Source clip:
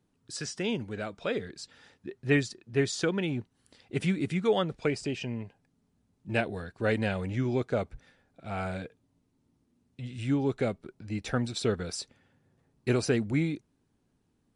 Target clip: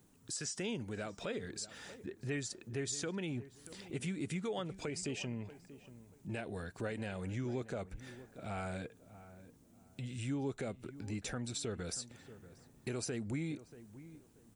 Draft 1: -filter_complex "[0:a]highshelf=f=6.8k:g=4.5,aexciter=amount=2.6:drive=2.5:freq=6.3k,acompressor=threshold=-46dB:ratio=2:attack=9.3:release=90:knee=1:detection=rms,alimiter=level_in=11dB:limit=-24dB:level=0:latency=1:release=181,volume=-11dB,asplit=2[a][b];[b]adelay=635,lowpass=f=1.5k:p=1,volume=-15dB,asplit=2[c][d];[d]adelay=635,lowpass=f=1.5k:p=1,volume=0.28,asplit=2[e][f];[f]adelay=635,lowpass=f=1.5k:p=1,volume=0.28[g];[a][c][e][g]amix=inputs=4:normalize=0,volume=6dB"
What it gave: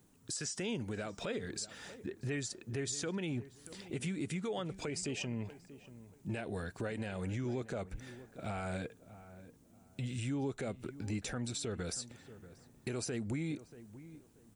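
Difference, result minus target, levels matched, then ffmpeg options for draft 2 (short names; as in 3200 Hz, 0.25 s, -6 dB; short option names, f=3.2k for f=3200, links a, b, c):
compressor: peak gain reduction -4 dB
-filter_complex "[0:a]highshelf=f=6.8k:g=4.5,aexciter=amount=2.6:drive=2.5:freq=6.3k,acompressor=threshold=-54dB:ratio=2:attack=9.3:release=90:knee=1:detection=rms,alimiter=level_in=11dB:limit=-24dB:level=0:latency=1:release=181,volume=-11dB,asplit=2[a][b];[b]adelay=635,lowpass=f=1.5k:p=1,volume=-15dB,asplit=2[c][d];[d]adelay=635,lowpass=f=1.5k:p=1,volume=0.28,asplit=2[e][f];[f]adelay=635,lowpass=f=1.5k:p=1,volume=0.28[g];[a][c][e][g]amix=inputs=4:normalize=0,volume=6dB"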